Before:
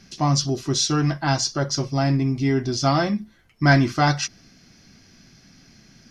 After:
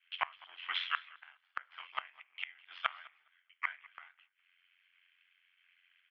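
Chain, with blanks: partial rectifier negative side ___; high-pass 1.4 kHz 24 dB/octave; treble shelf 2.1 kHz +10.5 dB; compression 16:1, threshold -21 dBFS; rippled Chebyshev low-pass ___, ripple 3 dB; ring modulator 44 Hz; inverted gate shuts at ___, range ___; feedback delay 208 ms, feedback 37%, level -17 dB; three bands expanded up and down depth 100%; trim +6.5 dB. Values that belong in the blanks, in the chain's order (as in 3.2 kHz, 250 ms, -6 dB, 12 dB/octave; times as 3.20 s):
-7 dB, 3.2 kHz, -30 dBFS, -26 dB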